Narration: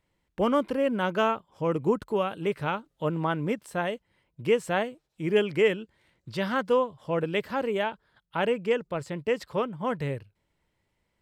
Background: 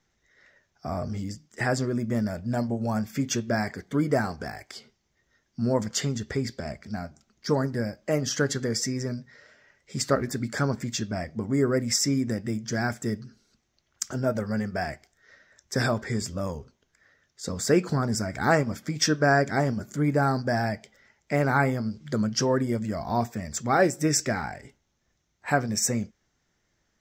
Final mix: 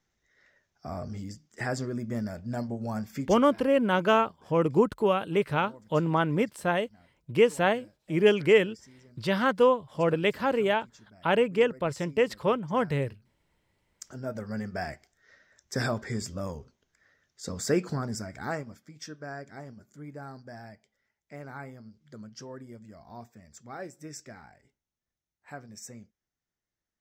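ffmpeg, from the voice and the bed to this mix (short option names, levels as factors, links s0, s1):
-filter_complex "[0:a]adelay=2900,volume=1.33[s0];[1:a]volume=6.68,afade=t=out:st=3.18:d=0.23:silence=0.0944061,afade=t=in:st=13.73:d=1.07:silence=0.0794328,afade=t=out:st=17.7:d=1.16:silence=0.177828[s1];[s0][s1]amix=inputs=2:normalize=0"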